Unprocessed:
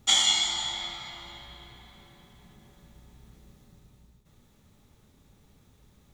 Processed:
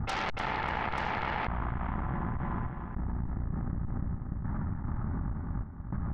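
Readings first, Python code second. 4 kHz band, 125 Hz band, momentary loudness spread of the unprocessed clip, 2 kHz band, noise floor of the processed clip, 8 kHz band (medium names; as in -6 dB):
-20.5 dB, +21.0 dB, 22 LU, +1.5 dB, -39 dBFS, under -25 dB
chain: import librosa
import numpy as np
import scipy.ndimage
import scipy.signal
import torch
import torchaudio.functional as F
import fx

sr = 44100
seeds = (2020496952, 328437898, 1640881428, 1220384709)

y = scipy.signal.sosfilt(scipy.signal.butter(6, 1900.0, 'lowpass', fs=sr, output='sos'), x)
y = fx.low_shelf(y, sr, hz=390.0, db=5.0)
y = fx.step_gate(y, sr, bpm=152, pattern='xxx.xxxxx......', floor_db=-60.0, edge_ms=4.5)
y = fx.fixed_phaser(y, sr, hz=1100.0, stages=4)
y = fx.cheby_harmonics(y, sr, harmonics=(6,), levels_db=(-8,), full_scale_db=-25.5)
y = fx.echo_feedback(y, sr, ms=295, feedback_pct=39, wet_db=-17.0)
y = fx.env_flatten(y, sr, amount_pct=100)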